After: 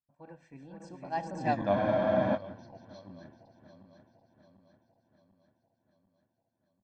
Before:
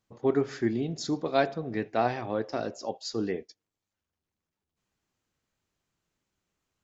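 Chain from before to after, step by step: backward echo that repeats 318 ms, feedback 81%, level -6 dB; Doppler pass-by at 1.57 s, 58 m/s, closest 8.2 m; treble shelf 2.8 kHz -11.5 dB; comb 1.2 ms, depth 85%; spectral freeze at 1.76 s, 0.59 s; trim -1 dB

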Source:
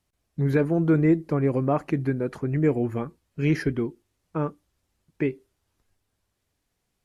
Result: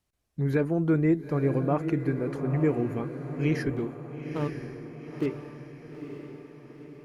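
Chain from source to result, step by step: 3.71–5.26 s: median filter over 25 samples; on a send: echo that smears into a reverb 911 ms, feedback 52%, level -8.5 dB; on the sum: trim -3.5 dB

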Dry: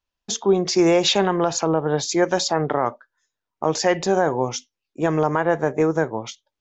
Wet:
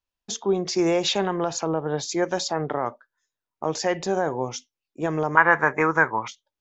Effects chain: 5.37–6.28 s: high-order bell 1.5 kHz +16 dB; trim -5 dB

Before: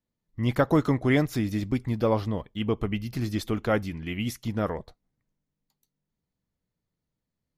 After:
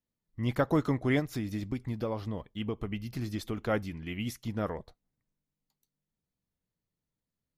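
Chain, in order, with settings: 1.19–3.58 s: compression, threshold -24 dBFS, peak gain reduction 6 dB; trim -5 dB

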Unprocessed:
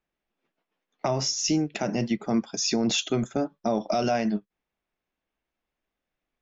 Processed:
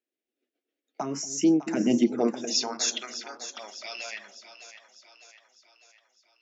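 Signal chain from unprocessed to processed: Doppler pass-by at 2.75 s, 17 m/s, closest 16 m; touch-sensitive phaser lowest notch 170 Hz, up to 3 kHz, full sweep at -22.5 dBFS; high-pass sweep 260 Hz -> 1.8 kHz, 1.98–2.94 s; on a send: two-band feedback delay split 560 Hz, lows 233 ms, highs 603 ms, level -12 dB; on the sum: trim +3.5 dB

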